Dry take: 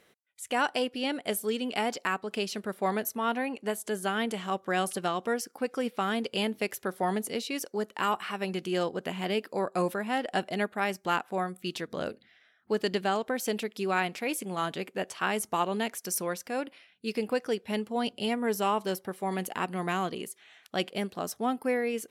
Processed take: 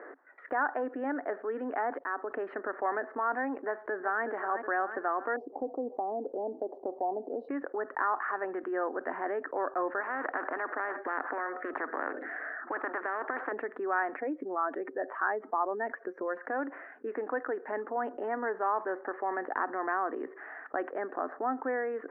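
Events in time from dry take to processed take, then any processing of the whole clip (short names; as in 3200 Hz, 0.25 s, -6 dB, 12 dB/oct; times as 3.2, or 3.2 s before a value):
1.99–2.42 fade in linear, from -22 dB
3.61–4.24 echo throw 0.37 s, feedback 45%, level -11.5 dB
5.36–7.49 elliptic band-stop 770–4300 Hz, stop band 50 dB
10–13.52 spectral compressor 4:1
14.16–16.37 spectral contrast raised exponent 1.6
whole clip: Chebyshev band-pass 270–1800 Hz, order 5; dynamic EQ 410 Hz, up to -8 dB, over -44 dBFS, Q 0.95; fast leveller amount 50%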